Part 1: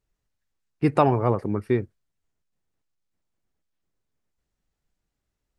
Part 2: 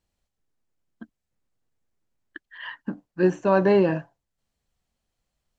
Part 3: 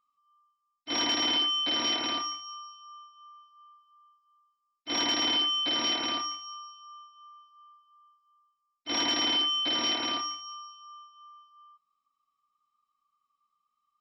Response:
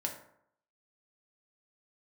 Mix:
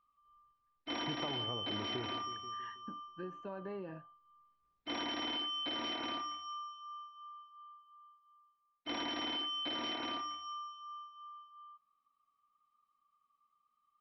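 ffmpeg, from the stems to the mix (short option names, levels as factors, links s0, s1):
-filter_complex "[0:a]acompressor=threshold=0.0794:ratio=2.5,adelay=250,volume=0.447,asplit=2[s0][s1];[s1]volume=0.237[s2];[1:a]acompressor=threshold=0.0355:ratio=2,volume=0.158[s3];[2:a]lowpass=f=2800:p=1,volume=1.19[s4];[s2]aecho=0:1:161|322|483|644|805|966|1127:1|0.48|0.23|0.111|0.0531|0.0255|0.0122[s5];[s0][s3][s4][s5]amix=inputs=4:normalize=0,lowpass=4000,acompressor=threshold=0.0112:ratio=3"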